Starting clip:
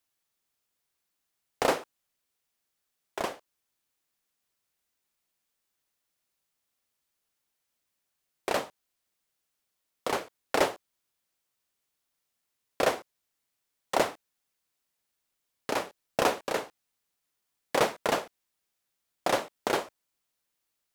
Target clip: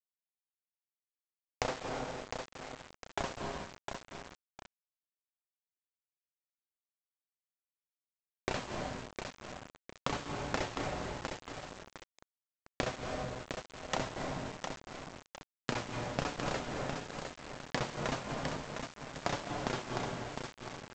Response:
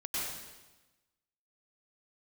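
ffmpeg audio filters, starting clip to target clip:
-filter_complex "[0:a]asubboost=boost=7:cutoff=160,flanger=delay=6.8:depth=1.6:regen=56:speed=0.98:shape=triangular,asplit=2[link_01][link_02];[link_02]highshelf=frequency=2100:gain=-11[link_03];[1:a]atrim=start_sample=2205,adelay=68[link_04];[link_03][link_04]afir=irnorm=-1:irlink=0,volume=-11dB[link_05];[link_01][link_05]amix=inputs=2:normalize=0,acompressor=threshold=-44dB:ratio=8,aecho=1:1:707|1414|2121|2828:0.501|0.18|0.065|0.0234,aresample=16000,aeval=exprs='val(0)*gte(abs(val(0)),0.00237)':channel_layout=same,aresample=44100,volume=11.5dB"

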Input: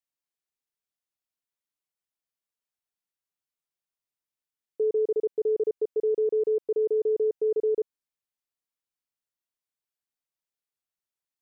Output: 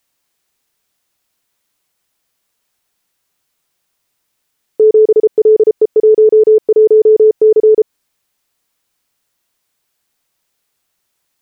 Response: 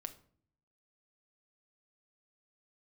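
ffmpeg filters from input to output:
-af "acompressor=threshold=-26dB:ratio=6,alimiter=level_in=25dB:limit=-1dB:release=50:level=0:latency=1,volume=-2dB"

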